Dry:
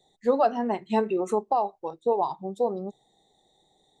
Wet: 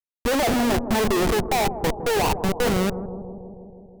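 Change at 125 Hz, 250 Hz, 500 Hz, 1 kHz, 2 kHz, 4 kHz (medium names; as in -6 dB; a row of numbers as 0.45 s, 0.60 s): +16.0 dB, +7.5 dB, +2.5 dB, +2.0 dB, +16.5 dB, no reading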